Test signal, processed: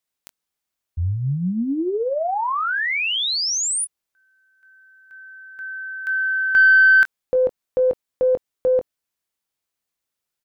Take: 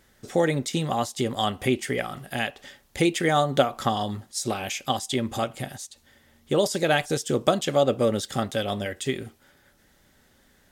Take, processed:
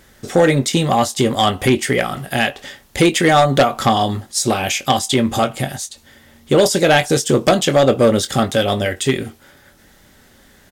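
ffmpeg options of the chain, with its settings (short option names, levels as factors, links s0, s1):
-filter_complex "[0:a]asplit=2[s0][s1];[s1]adelay=22,volume=0.282[s2];[s0][s2]amix=inputs=2:normalize=0,aeval=exprs='0.596*(cos(1*acos(clip(val(0)/0.596,-1,1)))-cos(1*PI/2))+0.188*(cos(2*acos(clip(val(0)/0.596,-1,1)))-cos(2*PI/2))+0.299*(cos(5*acos(clip(val(0)/0.596,-1,1)))-cos(5*PI/2))':c=same"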